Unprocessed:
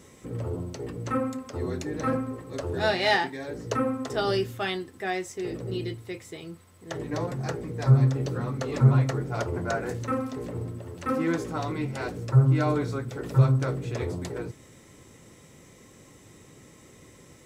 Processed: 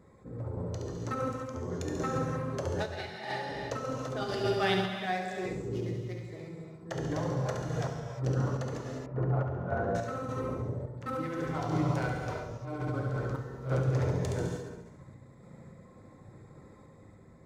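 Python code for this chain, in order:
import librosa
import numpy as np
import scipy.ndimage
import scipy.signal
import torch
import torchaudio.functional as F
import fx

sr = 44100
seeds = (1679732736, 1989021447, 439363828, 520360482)

y = fx.wiener(x, sr, points=15)
y = fx.peak_eq(y, sr, hz=360.0, db=-5.5, octaves=0.47)
y = fx.room_flutter(y, sr, wall_m=11.9, rt60_s=1.2)
y = fx.over_compress(y, sr, threshold_db=-27.0, ratio=-0.5)
y = fx.dereverb_blind(y, sr, rt60_s=1.0)
y = fx.rev_gated(y, sr, seeds[0], gate_ms=380, shape='flat', drr_db=0.5)
y = fx.tremolo_random(y, sr, seeds[1], hz=3.5, depth_pct=55)
y = fx.lowpass(y, sr, hz=1200.0, slope=12, at=(9.06, 9.95))
y = fx.attack_slew(y, sr, db_per_s=330.0)
y = F.gain(torch.from_numpy(y), -3.0).numpy()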